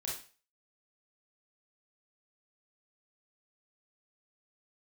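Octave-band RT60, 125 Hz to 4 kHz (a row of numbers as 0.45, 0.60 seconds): 0.35, 0.35, 0.35, 0.35, 0.40, 0.35 seconds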